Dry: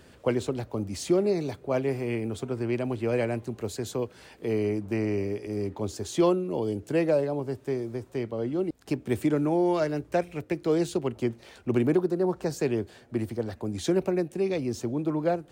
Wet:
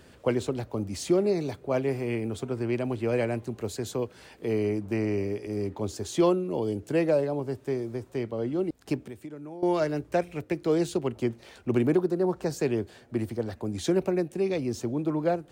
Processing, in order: 9.00–9.63 s: compression 3:1, threshold -44 dBFS, peak gain reduction 17.5 dB

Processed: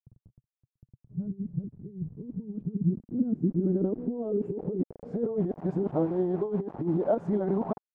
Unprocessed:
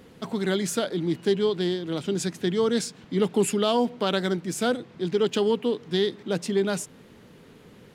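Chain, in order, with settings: reverse the whole clip; peaking EQ 3.3 kHz -10 dB 2.1 oct; bit crusher 7-bit; compressor with a negative ratio -27 dBFS, ratio -0.5; low-pass sweep 130 Hz -> 800 Hz, 1.93–5.78 s; trim -1.5 dB

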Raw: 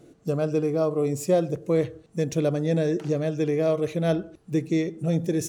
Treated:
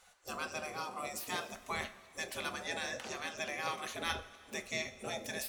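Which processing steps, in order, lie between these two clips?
spectral gate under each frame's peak -20 dB weak; two-slope reverb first 0.22 s, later 2.9 s, from -18 dB, DRR 8 dB; trim +2.5 dB

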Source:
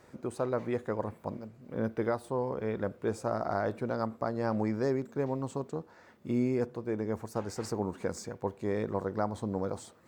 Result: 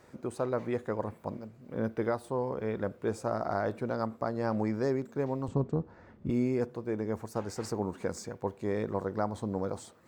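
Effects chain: 5.48–6.30 s: RIAA curve playback

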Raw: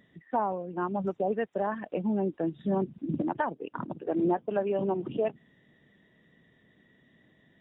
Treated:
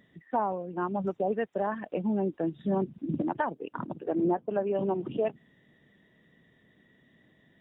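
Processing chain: 4.12–4.75 s: treble shelf 2.8 kHz -11.5 dB

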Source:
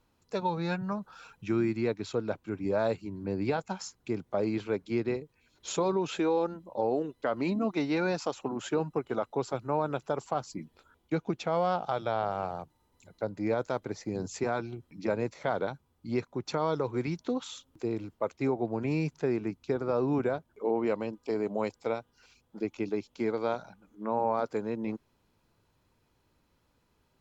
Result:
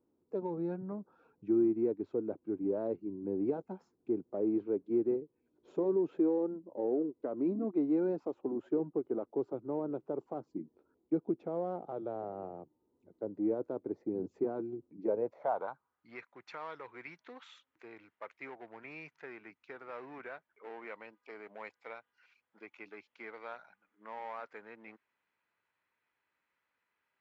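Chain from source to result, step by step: treble shelf 2.7 kHz -10 dB; in parallel at -7.5 dB: hard clipper -32 dBFS, distortion -6 dB; on the sum: band-pass sweep 340 Hz -> 2 kHz, 14.93–16.17 s

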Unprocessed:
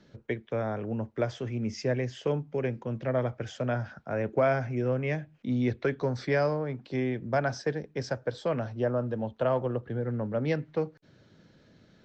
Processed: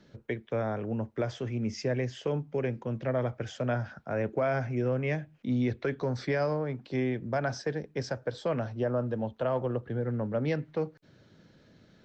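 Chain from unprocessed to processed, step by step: peak limiter -20 dBFS, peak gain reduction 5 dB

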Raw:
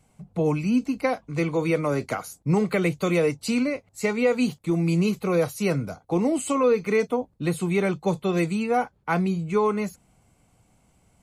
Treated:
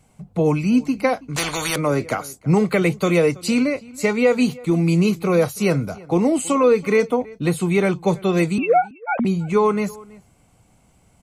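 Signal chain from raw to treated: 8.58–9.25 s: formants replaced by sine waves; echo from a far wall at 56 m, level -22 dB; 1.36–1.76 s: spectrum-flattening compressor 4:1; trim +5 dB

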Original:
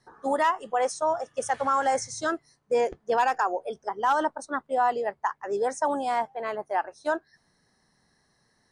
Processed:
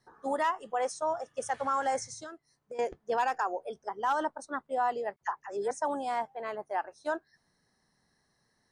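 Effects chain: 2.13–2.79 s: compression 4:1, threshold -38 dBFS, peak gain reduction 15 dB; 5.16–5.71 s: phase dispersion lows, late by 53 ms, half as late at 1.2 kHz; trim -5.5 dB

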